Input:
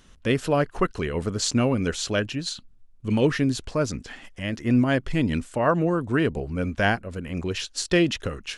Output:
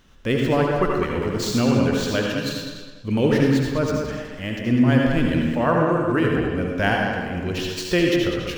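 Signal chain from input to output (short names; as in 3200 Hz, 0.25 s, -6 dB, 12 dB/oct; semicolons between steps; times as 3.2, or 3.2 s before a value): median filter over 5 samples; tape echo 0.202 s, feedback 40%, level -5.5 dB, low-pass 5100 Hz; reverb RT60 0.60 s, pre-delay 68 ms, DRR 1 dB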